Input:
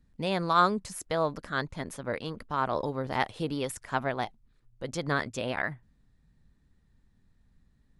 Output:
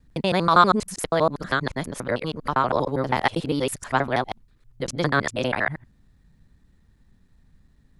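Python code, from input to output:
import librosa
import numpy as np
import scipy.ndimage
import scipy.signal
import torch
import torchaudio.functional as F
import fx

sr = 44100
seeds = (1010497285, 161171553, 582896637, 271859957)

y = fx.local_reverse(x, sr, ms=80.0)
y = y * librosa.db_to_amplitude(7.5)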